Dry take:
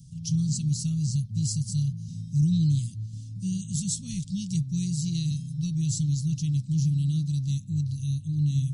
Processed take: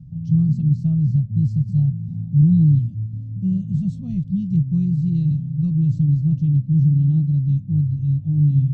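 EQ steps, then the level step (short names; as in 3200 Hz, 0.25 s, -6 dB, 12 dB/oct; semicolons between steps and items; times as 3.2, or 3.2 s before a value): synth low-pass 780 Hz, resonance Q 4.9; +8.5 dB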